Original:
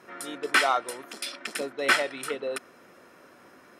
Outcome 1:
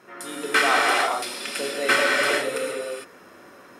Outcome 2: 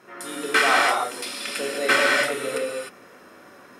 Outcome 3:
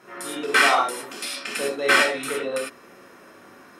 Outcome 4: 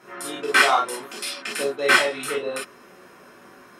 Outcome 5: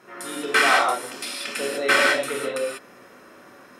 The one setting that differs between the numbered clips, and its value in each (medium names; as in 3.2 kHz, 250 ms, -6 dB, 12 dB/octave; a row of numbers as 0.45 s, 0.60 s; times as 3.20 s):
gated-style reverb, gate: 480 ms, 330 ms, 130 ms, 80 ms, 220 ms